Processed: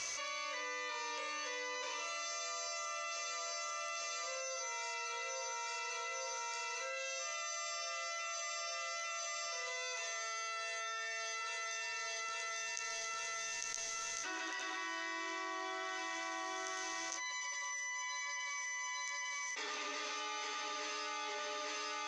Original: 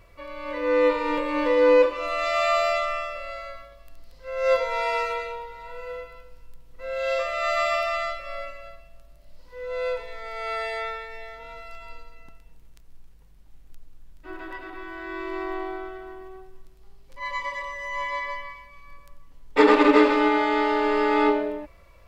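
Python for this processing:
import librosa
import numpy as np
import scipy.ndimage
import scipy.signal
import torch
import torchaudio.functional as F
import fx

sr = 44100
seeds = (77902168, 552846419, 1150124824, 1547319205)

y = fx.bandpass_q(x, sr, hz=6200.0, q=14.0)
y = fx.air_absorb(y, sr, metres=81.0)
y = fx.doubler(y, sr, ms=15.0, db=-5.5)
y = fx.echo_feedback(y, sr, ms=851, feedback_pct=40, wet_db=-8)
y = fx.env_flatten(y, sr, amount_pct=100)
y = y * librosa.db_to_amplitude(10.5)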